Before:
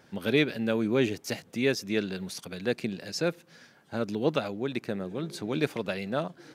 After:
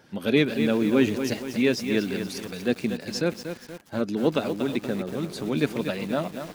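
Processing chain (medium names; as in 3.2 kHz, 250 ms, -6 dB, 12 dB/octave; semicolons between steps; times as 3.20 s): coarse spectral quantiser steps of 15 dB; dynamic bell 250 Hz, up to +5 dB, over -41 dBFS, Q 2.9; bit-crushed delay 237 ms, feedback 55%, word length 7-bit, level -8 dB; trim +2.5 dB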